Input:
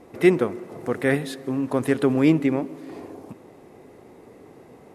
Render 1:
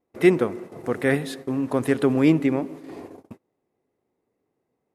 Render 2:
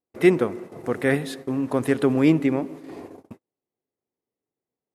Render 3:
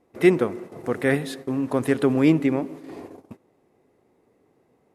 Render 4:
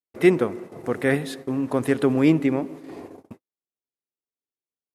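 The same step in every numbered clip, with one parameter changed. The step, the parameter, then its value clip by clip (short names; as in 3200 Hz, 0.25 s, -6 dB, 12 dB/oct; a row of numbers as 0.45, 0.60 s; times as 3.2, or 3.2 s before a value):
gate, range: -29, -43, -16, -59 dB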